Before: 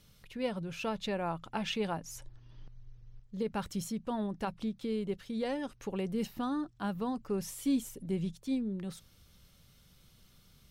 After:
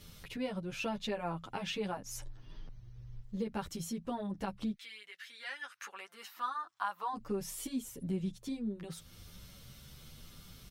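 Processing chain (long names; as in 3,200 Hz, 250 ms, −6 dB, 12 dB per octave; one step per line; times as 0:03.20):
downward compressor 2 to 1, threshold −52 dBFS, peak gain reduction 14 dB
0:04.73–0:07.13: high-pass with resonance 2,100 Hz → 940 Hz, resonance Q 3.1
barber-pole flanger 9.6 ms +0.78 Hz
level +11.5 dB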